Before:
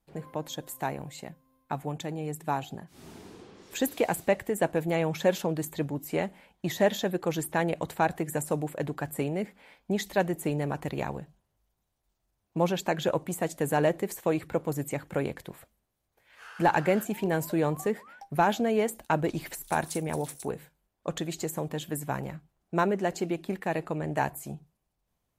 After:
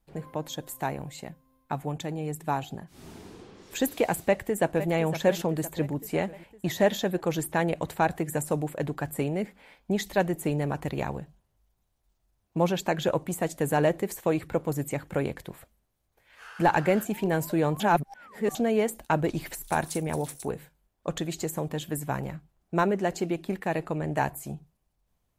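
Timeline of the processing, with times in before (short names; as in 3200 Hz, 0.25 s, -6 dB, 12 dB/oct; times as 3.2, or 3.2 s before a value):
4.23–4.9 echo throw 0.51 s, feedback 60%, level -12 dB
17.8–18.55 reverse
whole clip: low shelf 66 Hz +8.5 dB; gain +1 dB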